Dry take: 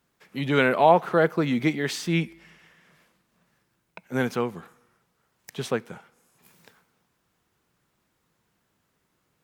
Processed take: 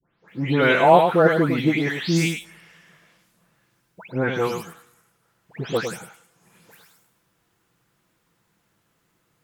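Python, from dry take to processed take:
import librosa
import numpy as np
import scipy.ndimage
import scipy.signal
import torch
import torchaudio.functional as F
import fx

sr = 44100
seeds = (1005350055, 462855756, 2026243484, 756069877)

y = fx.spec_delay(x, sr, highs='late', ms=279)
y = y + 10.0 ** (-7.0 / 20.0) * np.pad(y, (int(104 * sr / 1000.0), 0))[:len(y)]
y = F.gain(torch.from_numpy(y), 4.0).numpy()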